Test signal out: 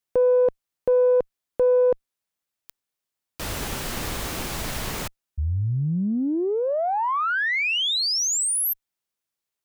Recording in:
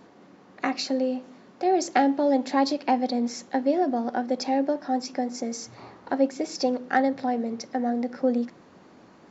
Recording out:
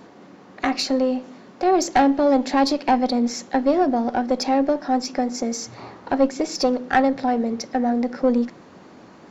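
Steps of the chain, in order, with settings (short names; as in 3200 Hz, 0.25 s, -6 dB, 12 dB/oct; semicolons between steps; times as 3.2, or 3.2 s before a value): one diode to ground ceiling -16 dBFS; gain +6.5 dB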